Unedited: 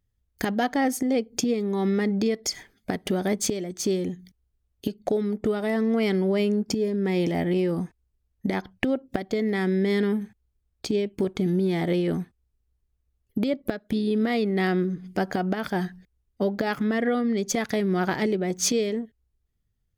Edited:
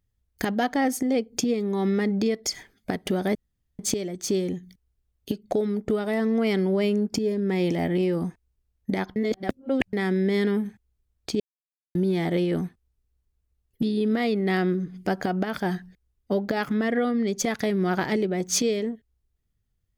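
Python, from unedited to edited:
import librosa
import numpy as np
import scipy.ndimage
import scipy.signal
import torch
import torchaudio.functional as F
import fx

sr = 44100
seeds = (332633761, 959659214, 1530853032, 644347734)

y = fx.edit(x, sr, fx.insert_room_tone(at_s=3.35, length_s=0.44),
    fx.reverse_span(start_s=8.72, length_s=0.77),
    fx.silence(start_s=10.96, length_s=0.55),
    fx.cut(start_s=13.38, length_s=0.54), tone=tone)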